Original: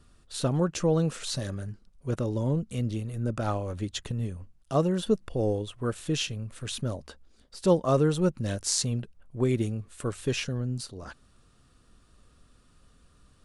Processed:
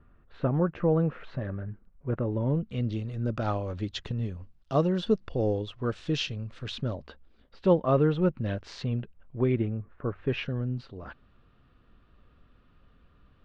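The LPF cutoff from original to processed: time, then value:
LPF 24 dB/oct
2.25 s 2100 Hz
2.98 s 4900 Hz
6.45 s 4900 Hz
7.59 s 3100 Hz
9.46 s 3100 Hz
10.05 s 1400 Hz
10.4 s 3100 Hz

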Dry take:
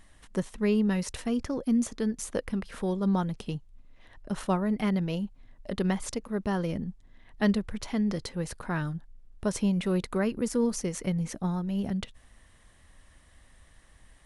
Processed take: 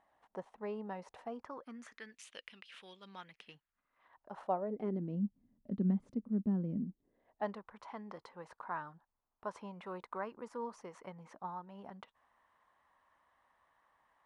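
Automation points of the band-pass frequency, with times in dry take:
band-pass, Q 3.1
1.31 s 800 Hz
2.29 s 2900 Hz
3.02 s 2900 Hz
4.49 s 730 Hz
5.17 s 220 Hz
6.77 s 220 Hz
7.55 s 980 Hz

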